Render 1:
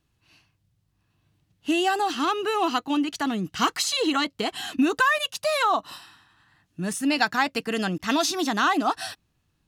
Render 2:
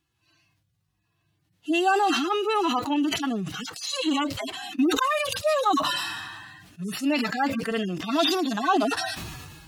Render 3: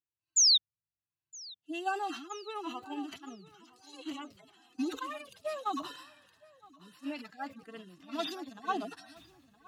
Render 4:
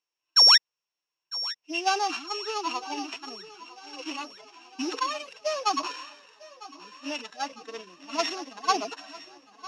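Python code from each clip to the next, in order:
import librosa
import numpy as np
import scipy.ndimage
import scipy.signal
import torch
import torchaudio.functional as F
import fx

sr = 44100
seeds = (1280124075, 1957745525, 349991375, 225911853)

y1 = fx.hpss_only(x, sr, part='harmonic')
y1 = fx.low_shelf(y1, sr, hz=240.0, db=-9.0)
y1 = fx.sustainer(y1, sr, db_per_s=32.0)
y1 = y1 * 10.0 ** (2.5 / 20.0)
y2 = fx.spec_paint(y1, sr, seeds[0], shape='fall', start_s=0.36, length_s=0.22, low_hz=3500.0, high_hz=7300.0, level_db=-16.0)
y2 = fx.echo_feedback(y2, sr, ms=966, feedback_pct=39, wet_db=-9.5)
y2 = fx.upward_expand(y2, sr, threshold_db=-31.0, expansion=2.5)
y2 = y2 * 10.0 ** (-6.0 / 20.0)
y3 = np.r_[np.sort(y2[:len(y2) // 8 * 8].reshape(-1, 8), axis=1).ravel(), y2[len(y2) // 8 * 8:]]
y3 = fx.cabinet(y3, sr, low_hz=370.0, low_slope=12, high_hz=7100.0, hz=(470.0, 1000.0, 2700.0, 6200.0), db=(5, 7, 9, 5))
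y3 = fx.echo_feedback(y3, sr, ms=952, feedback_pct=58, wet_db=-19.5)
y3 = y3 * 10.0 ** (6.5 / 20.0)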